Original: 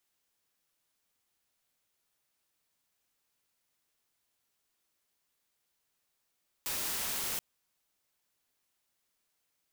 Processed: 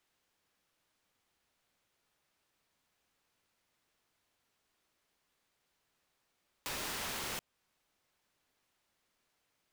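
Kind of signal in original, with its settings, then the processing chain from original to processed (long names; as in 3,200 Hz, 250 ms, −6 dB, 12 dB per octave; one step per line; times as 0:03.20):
noise white, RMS −35 dBFS 0.73 s
low-pass filter 3,000 Hz 6 dB per octave
in parallel at +0.5 dB: downward compressor, threshold −51 dBFS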